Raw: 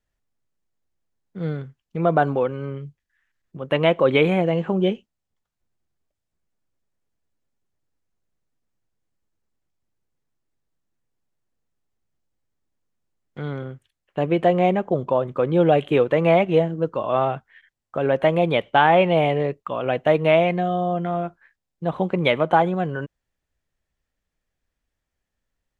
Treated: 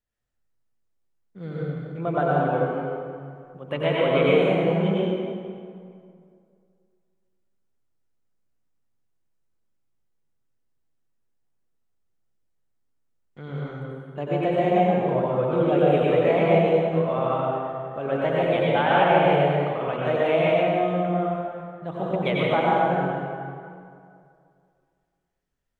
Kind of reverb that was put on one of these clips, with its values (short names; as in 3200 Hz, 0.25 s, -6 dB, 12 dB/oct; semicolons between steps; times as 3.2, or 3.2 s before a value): plate-style reverb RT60 2.3 s, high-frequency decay 0.65×, pre-delay 80 ms, DRR -6.5 dB; gain -9 dB